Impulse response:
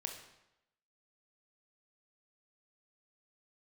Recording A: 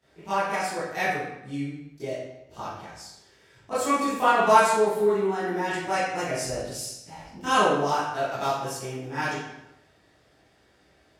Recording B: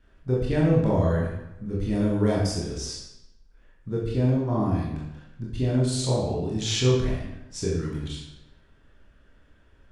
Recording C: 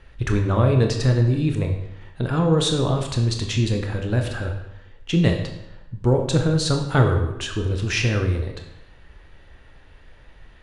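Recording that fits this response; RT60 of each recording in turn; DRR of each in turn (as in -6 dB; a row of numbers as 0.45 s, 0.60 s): C; 0.90 s, 0.90 s, 0.90 s; -15.0 dB, -5.0 dB, 3.0 dB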